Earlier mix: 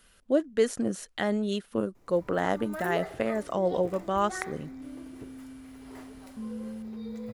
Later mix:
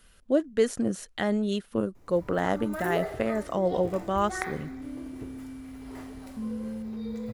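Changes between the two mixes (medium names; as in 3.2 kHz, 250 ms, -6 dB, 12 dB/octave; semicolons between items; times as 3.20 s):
background: send +9.5 dB; master: add bass shelf 140 Hz +6.5 dB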